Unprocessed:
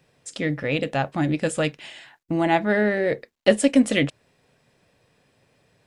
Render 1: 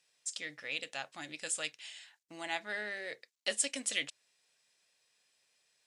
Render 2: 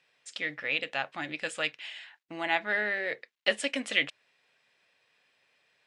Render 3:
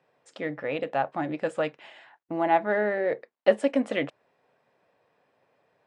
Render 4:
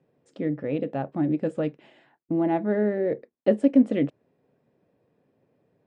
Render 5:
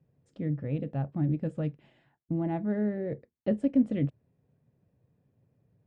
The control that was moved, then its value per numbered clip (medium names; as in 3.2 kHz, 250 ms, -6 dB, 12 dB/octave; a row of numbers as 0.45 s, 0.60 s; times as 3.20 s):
band-pass filter, frequency: 6.9 kHz, 2.6 kHz, 840 Hz, 310 Hz, 110 Hz